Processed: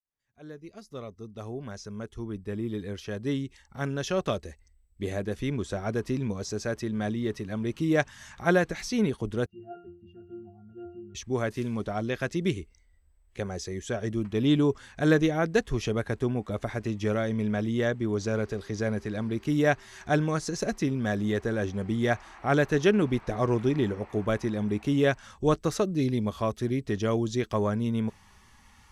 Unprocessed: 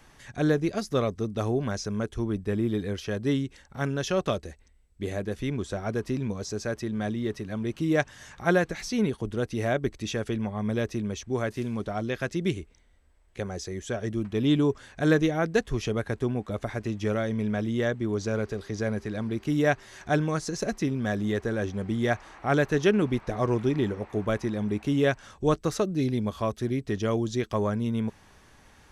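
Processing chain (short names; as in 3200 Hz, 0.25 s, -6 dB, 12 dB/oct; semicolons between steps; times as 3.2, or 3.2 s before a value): opening faded in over 4.97 s; 9.46–11.15 octave resonator F, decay 0.49 s; spectral noise reduction 11 dB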